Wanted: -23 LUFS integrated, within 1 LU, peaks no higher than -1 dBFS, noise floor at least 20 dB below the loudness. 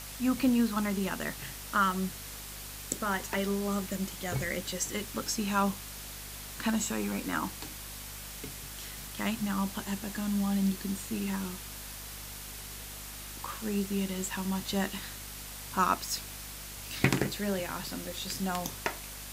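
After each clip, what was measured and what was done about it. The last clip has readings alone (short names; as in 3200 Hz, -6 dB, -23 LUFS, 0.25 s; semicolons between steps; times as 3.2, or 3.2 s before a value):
hum 50 Hz; harmonics up to 250 Hz; hum level -47 dBFS; noise floor -43 dBFS; noise floor target -53 dBFS; loudness -33.0 LUFS; peak -9.5 dBFS; loudness target -23.0 LUFS
-> de-hum 50 Hz, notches 5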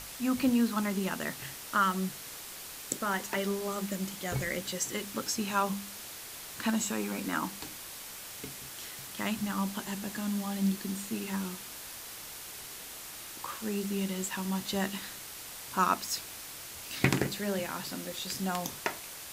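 hum none; noise floor -45 dBFS; noise floor target -54 dBFS
-> noise print and reduce 9 dB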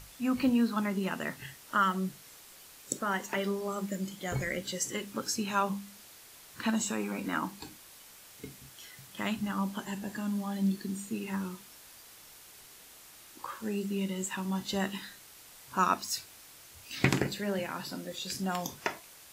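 noise floor -54 dBFS; loudness -33.0 LUFS; peak -10.0 dBFS; loudness target -23.0 LUFS
-> gain +10 dB; limiter -1 dBFS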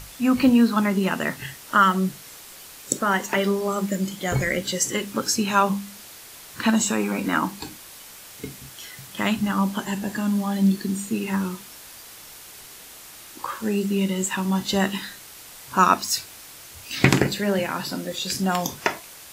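loudness -23.0 LUFS; peak -1.0 dBFS; noise floor -44 dBFS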